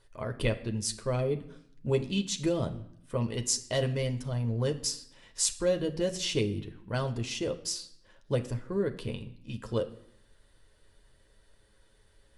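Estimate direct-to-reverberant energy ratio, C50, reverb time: 5.0 dB, 14.5 dB, 0.70 s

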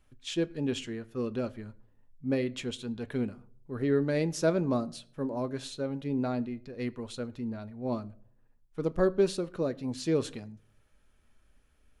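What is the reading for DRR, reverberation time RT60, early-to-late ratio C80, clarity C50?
12.0 dB, no single decay rate, 25.5 dB, 23.0 dB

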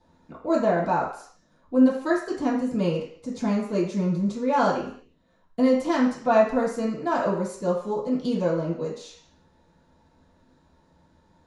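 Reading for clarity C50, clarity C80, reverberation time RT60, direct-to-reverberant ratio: 5.5 dB, 9.0 dB, 0.55 s, -10.0 dB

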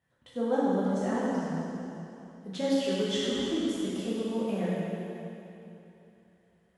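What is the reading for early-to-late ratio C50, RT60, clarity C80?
-3.5 dB, 3.0 s, -2.0 dB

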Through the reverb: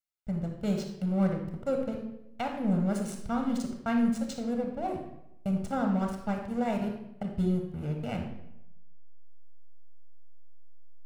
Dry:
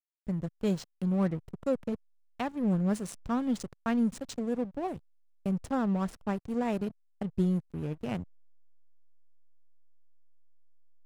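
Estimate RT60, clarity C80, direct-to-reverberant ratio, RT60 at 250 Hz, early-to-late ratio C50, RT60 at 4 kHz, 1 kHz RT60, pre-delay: 0.85 s, 8.5 dB, 3.0 dB, 0.90 s, 5.0 dB, 0.65 s, 0.80 s, 10 ms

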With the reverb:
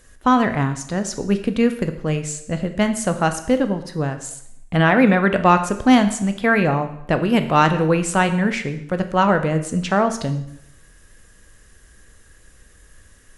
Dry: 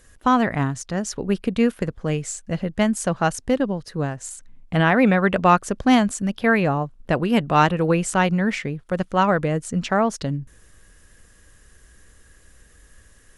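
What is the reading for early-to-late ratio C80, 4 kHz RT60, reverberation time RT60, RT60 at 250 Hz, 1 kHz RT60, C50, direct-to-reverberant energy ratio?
13.5 dB, 0.70 s, 0.75 s, 0.75 s, 0.75 s, 11.0 dB, 8.0 dB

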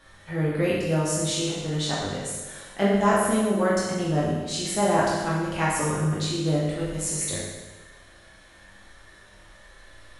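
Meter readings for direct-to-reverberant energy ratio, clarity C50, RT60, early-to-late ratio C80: -7.5 dB, -0.5 dB, 1.3 s, 2.5 dB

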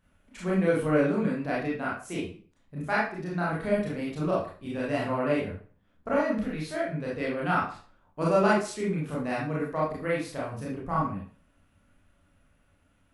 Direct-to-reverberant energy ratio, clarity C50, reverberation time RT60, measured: -6.5 dB, 2.0 dB, 0.40 s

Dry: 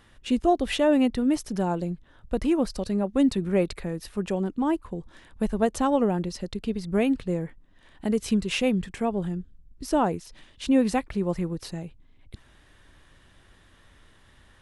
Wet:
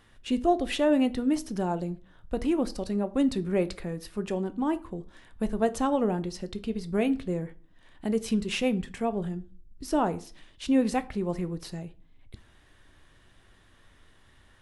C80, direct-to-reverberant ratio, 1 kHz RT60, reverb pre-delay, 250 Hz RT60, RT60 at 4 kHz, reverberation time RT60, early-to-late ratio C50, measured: 24.0 dB, 11.0 dB, 0.40 s, 3 ms, 0.55 s, 0.30 s, 0.40 s, 19.5 dB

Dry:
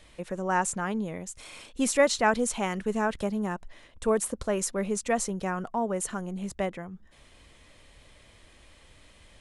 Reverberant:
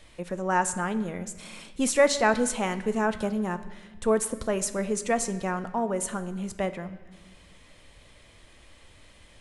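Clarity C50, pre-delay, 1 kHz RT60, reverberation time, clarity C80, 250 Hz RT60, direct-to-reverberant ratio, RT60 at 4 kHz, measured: 13.5 dB, 6 ms, 1.2 s, 1.3 s, 15.0 dB, 2.0 s, 10.5 dB, 1.2 s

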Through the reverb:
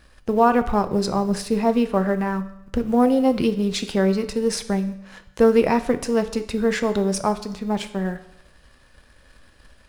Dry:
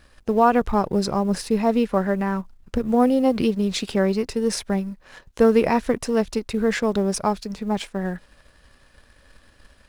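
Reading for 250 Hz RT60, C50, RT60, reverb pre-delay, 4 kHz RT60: 0.80 s, 13.5 dB, 0.80 s, 7 ms, 0.75 s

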